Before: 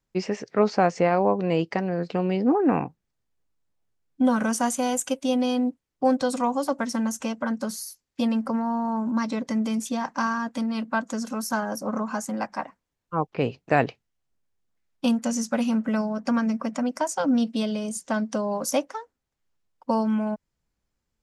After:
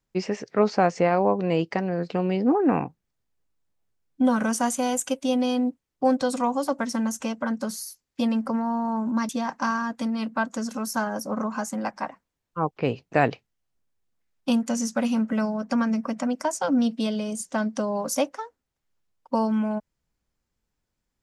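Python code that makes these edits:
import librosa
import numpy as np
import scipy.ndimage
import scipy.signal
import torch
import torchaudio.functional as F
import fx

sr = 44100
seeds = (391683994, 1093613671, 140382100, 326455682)

y = fx.edit(x, sr, fx.cut(start_s=9.29, length_s=0.56), tone=tone)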